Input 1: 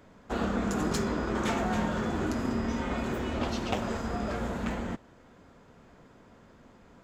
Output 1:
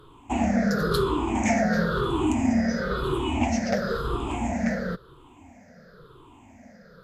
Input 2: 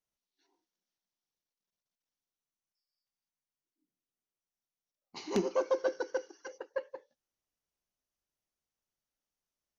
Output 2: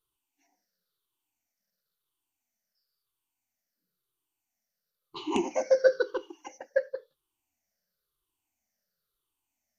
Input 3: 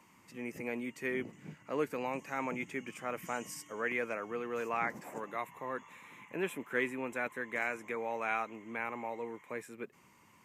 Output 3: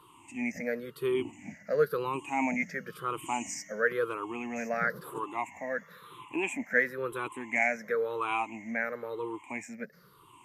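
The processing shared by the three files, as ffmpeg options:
ffmpeg -i in.wav -af "afftfilt=real='re*pow(10,23/40*sin(2*PI*(0.63*log(max(b,1)*sr/1024/100)/log(2)-(-0.98)*(pts-256)/sr)))':imag='im*pow(10,23/40*sin(2*PI*(0.63*log(max(b,1)*sr/1024/100)/log(2)-(-0.98)*(pts-256)/sr)))':win_size=1024:overlap=0.75" -ar 48000 -c:a mp2 -b:a 192k out.mp2

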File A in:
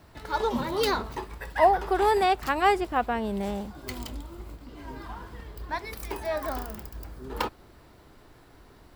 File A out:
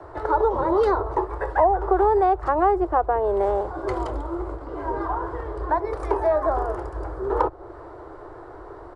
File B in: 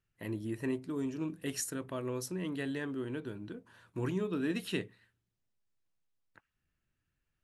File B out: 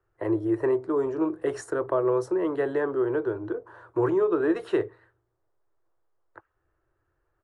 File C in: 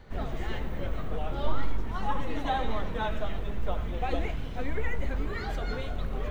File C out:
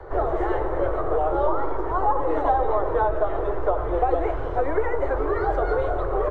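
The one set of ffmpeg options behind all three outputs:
ffmpeg -i in.wav -filter_complex "[0:a]firequalizer=gain_entry='entry(110,0);entry(220,-20);entry(330,10);entry(1200,8);entry(2500,-13);entry(5900,-15)':delay=0.05:min_phase=1,acrossover=split=140|280|1000[link_01][link_02][link_03][link_04];[link_01]acompressor=threshold=-33dB:ratio=4[link_05];[link_02]acompressor=threshold=-50dB:ratio=4[link_06];[link_03]acompressor=threshold=-29dB:ratio=4[link_07];[link_04]acompressor=threshold=-41dB:ratio=4[link_08];[link_05][link_06][link_07][link_08]amix=inputs=4:normalize=0,aresample=22050,aresample=44100,volume=8dB" out.wav

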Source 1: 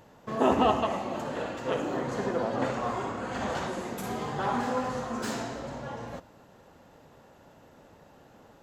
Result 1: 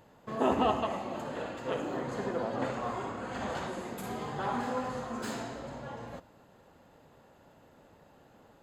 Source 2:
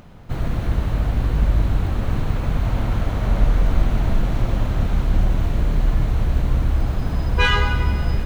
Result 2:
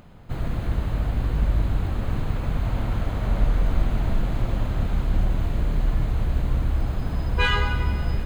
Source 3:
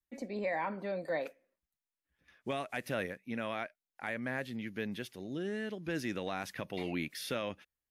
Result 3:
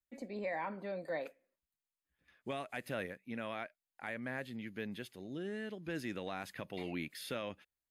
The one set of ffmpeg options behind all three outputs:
ffmpeg -i in.wav -af "bandreject=frequency=5700:width=6.8,volume=-4dB" out.wav

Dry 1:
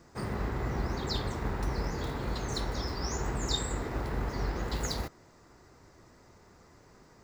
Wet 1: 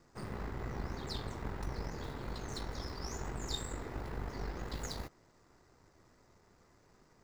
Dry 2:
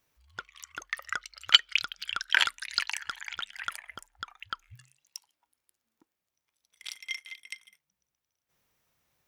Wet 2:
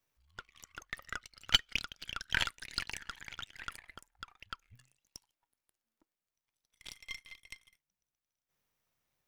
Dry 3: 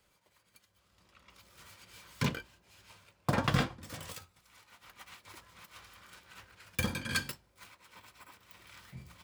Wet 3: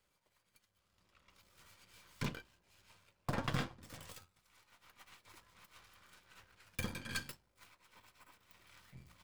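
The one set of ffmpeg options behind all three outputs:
ffmpeg -i in.wav -af "aeval=exprs='if(lt(val(0),0),0.447*val(0),val(0))':channel_layout=same,volume=-5.5dB" out.wav

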